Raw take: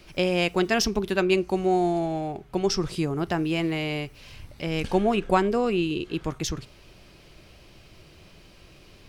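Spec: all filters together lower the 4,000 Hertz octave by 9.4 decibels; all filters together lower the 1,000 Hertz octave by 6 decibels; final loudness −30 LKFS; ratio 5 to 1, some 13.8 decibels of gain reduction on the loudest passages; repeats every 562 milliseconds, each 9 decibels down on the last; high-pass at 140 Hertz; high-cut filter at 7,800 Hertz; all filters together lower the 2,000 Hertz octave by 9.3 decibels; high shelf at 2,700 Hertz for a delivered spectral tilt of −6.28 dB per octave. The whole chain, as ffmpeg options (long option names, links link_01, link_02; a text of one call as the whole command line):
ffmpeg -i in.wav -af "highpass=140,lowpass=7800,equalizer=frequency=1000:width_type=o:gain=-7.5,equalizer=frequency=2000:width_type=o:gain=-5.5,highshelf=frequency=2700:gain=-7,equalizer=frequency=4000:width_type=o:gain=-4,acompressor=threshold=-36dB:ratio=5,aecho=1:1:562|1124|1686|2248:0.355|0.124|0.0435|0.0152,volume=9dB" out.wav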